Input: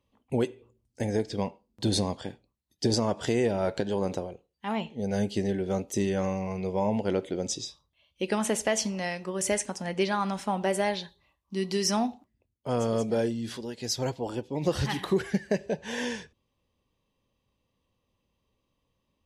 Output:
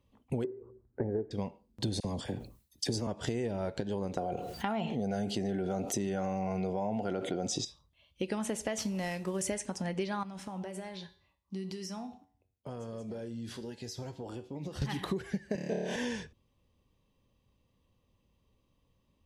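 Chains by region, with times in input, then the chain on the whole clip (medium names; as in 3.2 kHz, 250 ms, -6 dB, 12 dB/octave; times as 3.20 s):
0.44–1.31 s: steep low-pass 1.6 kHz + peaking EQ 390 Hz +13.5 dB 0.38 oct + tape noise reduction on one side only encoder only
2.00–3.07 s: treble shelf 6.6 kHz +11 dB + phase dispersion lows, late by 44 ms, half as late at 1.5 kHz + decay stretcher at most 130 dB/s
4.17–7.65 s: high-pass 120 Hz + small resonant body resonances 720/1400 Hz, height 14 dB + level flattener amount 70%
8.78–9.41 s: CVSD coder 64 kbps + band-stop 1.2 kHz, Q 27
10.23–14.82 s: compression 12:1, threshold -33 dBFS + high-pass 50 Hz + feedback comb 94 Hz, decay 0.5 s
15.55–15.96 s: high-pass 180 Hz + flutter echo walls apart 4.7 m, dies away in 1.3 s
whole clip: bass shelf 250 Hz +7 dB; compression 6:1, threshold -31 dBFS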